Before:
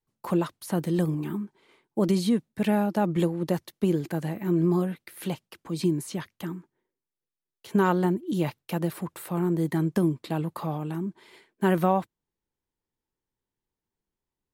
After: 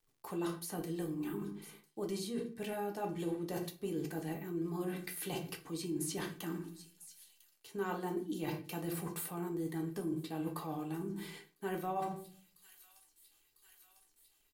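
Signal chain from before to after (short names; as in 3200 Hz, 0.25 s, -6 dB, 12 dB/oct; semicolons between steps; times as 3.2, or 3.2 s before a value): high shelf 4200 Hz +8 dB; on a send: thin delay 1 s, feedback 71%, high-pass 4200 Hz, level -21 dB; on the sum: shoebox room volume 39 m³, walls mixed, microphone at 0.42 m; reverse; compressor 6:1, threshold -35 dBFS, peak gain reduction 20 dB; reverse; notches 50/100/150 Hz; comb 2.6 ms, depth 37%; crackle 150/s -63 dBFS; gain -1 dB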